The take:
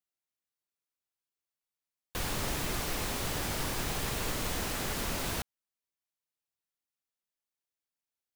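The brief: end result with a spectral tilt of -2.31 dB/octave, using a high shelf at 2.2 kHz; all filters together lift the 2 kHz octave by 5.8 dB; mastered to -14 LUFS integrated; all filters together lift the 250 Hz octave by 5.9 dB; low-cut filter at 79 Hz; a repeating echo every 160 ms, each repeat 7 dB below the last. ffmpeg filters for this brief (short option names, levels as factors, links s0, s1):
-af "highpass=79,equalizer=f=250:t=o:g=7.5,equalizer=f=2000:t=o:g=3.5,highshelf=f=2200:g=6.5,aecho=1:1:160|320|480|640|800:0.447|0.201|0.0905|0.0407|0.0183,volume=4.73"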